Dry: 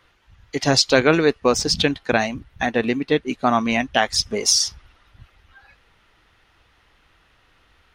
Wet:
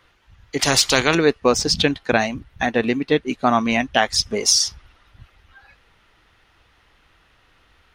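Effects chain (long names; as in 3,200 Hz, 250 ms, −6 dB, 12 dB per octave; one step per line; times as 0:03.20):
0:00.59–0:01.15: every bin compressed towards the loudest bin 2 to 1
level +1 dB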